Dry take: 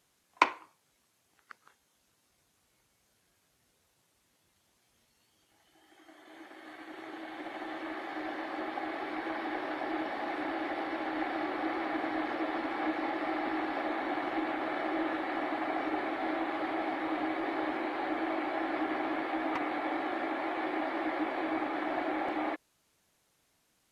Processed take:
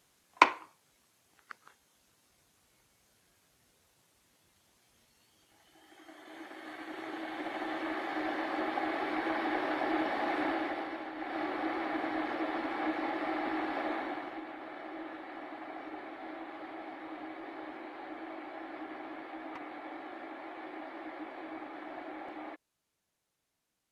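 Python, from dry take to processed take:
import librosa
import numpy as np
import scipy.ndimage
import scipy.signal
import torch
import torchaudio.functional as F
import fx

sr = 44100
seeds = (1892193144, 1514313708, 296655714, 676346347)

y = fx.gain(x, sr, db=fx.line((10.48, 3.0), (11.16, -8.0), (11.39, -1.0), (13.94, -1.0), (14.43, -10.5)))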